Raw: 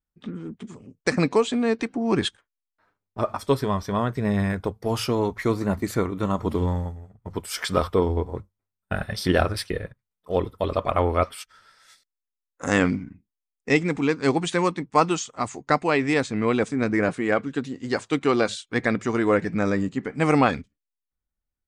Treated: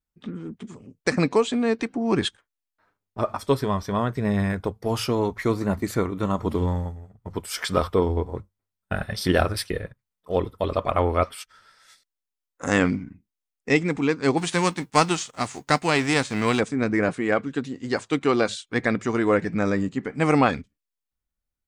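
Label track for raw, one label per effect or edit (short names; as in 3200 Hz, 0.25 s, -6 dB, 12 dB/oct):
9.210000	9.810000	high shelf 8300 Hz +5.5 dB
14.370000	16.590000	spectral whitening exponent 0.6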